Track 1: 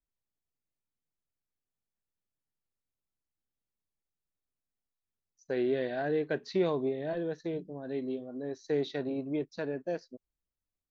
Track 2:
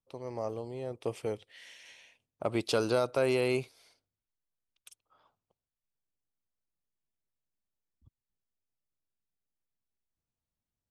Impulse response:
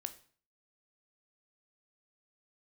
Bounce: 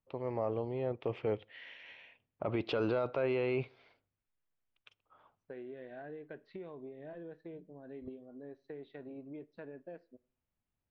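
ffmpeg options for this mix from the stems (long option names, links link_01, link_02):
-filter_complex "[0:a]acompressor=threshold=-33dB:ratio=6,volume=-4dB,asplit=2[link_01][link_02];[link_02]volume=-14.5dB[link_03];[1:a]volume=2dB,asplit=3[link_04][link_05][link_06];[link_05]volume=-15.5dB[link_07];[link_06]apad=whole_len=480719[link_08];[link_01][link_08]sidechaingate=range=-9dB:threshold=-55dB:ratio=16:detection=peak[link_09];[2:a]atrim=start_sample=2205[link_10];[link_03][link_07]amix=inputs=2:normalize=0[link_11];[link_11][link_10]afir=irnorm=-1:irlink=0[link_12];[link_09][link_04][link_12]amix=inputs=3:normalize=0,lowpass=frequency=2900:width=0.5412,lowpass=frequency=2900:width=1.3066,alimiter=limit=-23.5dB:level=0:latency=1:release=18"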